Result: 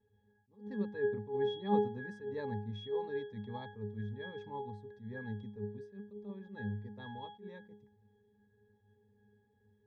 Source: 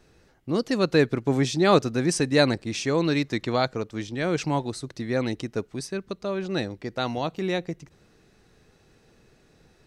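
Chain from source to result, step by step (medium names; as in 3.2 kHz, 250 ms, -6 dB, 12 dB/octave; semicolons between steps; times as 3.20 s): dynamic bell 1 kHz, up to +5 dB, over -40 dBFS, Q 1.6; pitch-class resonator G#, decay 0.45 s; attacks held to a fixed rise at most 170 dB/s; trim +3.5 dB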